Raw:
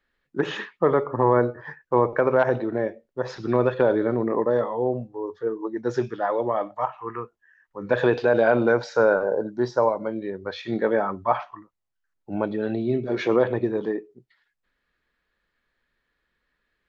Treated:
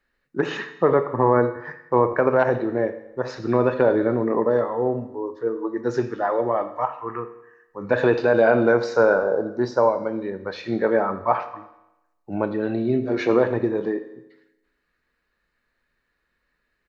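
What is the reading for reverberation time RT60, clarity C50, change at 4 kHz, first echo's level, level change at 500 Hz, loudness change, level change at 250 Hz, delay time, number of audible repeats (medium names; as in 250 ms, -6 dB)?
0.90 s, 12.0 dB, -0.5 dB, -19.5 dB, +2.0 dB, +2.0 dB, +2.0 dB, 85 ms, 3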